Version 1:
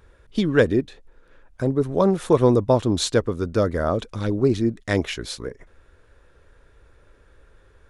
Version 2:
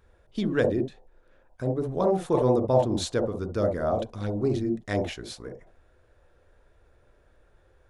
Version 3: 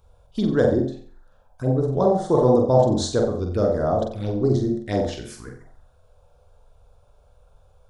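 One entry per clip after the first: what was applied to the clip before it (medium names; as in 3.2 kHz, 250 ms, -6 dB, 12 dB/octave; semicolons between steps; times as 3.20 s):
on a send at -2.5 dB: FFT filter 430 Hz 0 dB, 740 Hz +10 dB, 2 kHz -28 dB + reverberation, pre-delay 28 ms; on the sum: trim -8 dB
touch-sensitive phaser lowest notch 300 Hz, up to 2.5 kHz, full sweep at -25 dBFS; on a send: flutter echo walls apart 7.8 m, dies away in 0.45 s; on the sum: trim +5 dB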